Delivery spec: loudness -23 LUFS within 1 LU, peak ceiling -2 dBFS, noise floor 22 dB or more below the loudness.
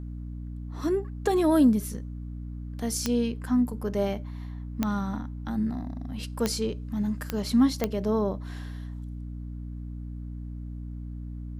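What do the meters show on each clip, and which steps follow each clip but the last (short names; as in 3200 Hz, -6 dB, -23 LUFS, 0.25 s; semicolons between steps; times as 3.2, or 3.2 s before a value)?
clicks 5; hum 60 Hz; harmonics up to 300 Hz; hum level -34 dBFS; loudness -29.5 LUFS; peak -9.5 dBFS; loudness target -23.0 LUFS
-> de-click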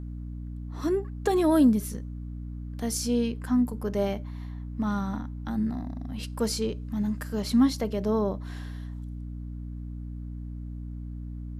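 clicks 0; hum 60 Hz; harmonics up to 300 Hz; hum level -34 dBFS
-> notches 60/120/180/240/300 Hz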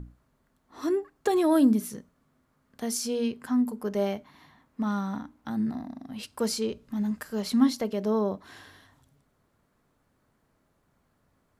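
hum none; loudness -28.0 LUFS; peak -10.0 dBFS; loudness target -23.0 LUFS
-> gain +5 dB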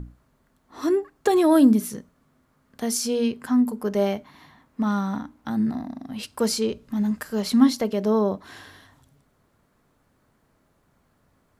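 loudness -23.5 LUFS; peak -5.0 dBFS; noise floor -67 dBFS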